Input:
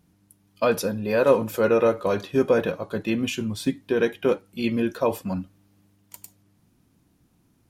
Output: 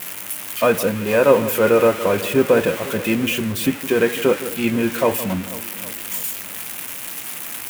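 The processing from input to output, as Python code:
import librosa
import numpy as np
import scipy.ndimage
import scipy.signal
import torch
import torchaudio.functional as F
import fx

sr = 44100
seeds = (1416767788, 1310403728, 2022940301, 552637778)

y = x + 0.5 * 10.0 ** (-15.5 / 20.0) * np.diff(np.sign(x), prepend=np.sign(x[:1]))
y = fx.high_shelf_res(y, sr, hz=3400.0, db=-9.0, q=1.5)
y = fx.echo_alternate(y, sr, ms=163, hz=1400.0, feedback_pct=74, wet_db=-13.5)
y = y * librosa.db_to_amplitude(4.5)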